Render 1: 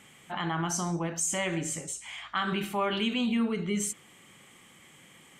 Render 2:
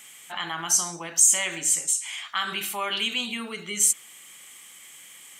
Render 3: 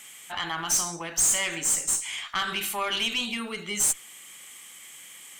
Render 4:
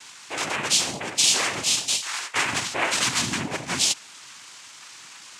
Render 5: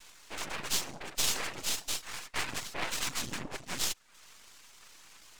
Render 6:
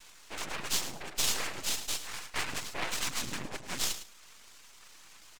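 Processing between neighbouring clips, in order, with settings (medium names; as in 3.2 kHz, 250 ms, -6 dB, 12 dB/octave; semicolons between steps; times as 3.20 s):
tilt EQ +4.5 dB/octave
valve stage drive 20 dB, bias 0.35; trim +2 dB
noise-vocoded speech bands 4; trim +4.5 dB
reverb removal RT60 0.52 s; half-wave rectifier; trim -6 dB
feedback delay 107 ms, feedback 22%, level -12 dB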